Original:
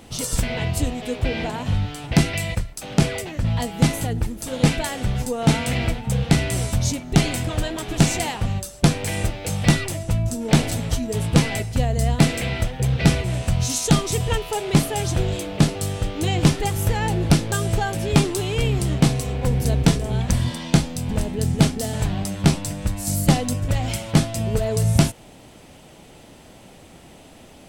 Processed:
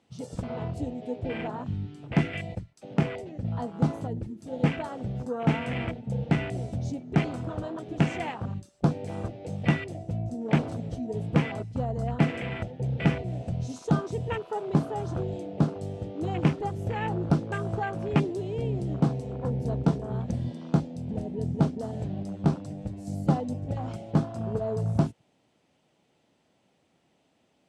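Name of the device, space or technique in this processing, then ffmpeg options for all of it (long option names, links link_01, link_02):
over-cleaned archive recording: -af "highpass=120,lowpass=6800,afwtdn=0.0398,volume=-5.5dB"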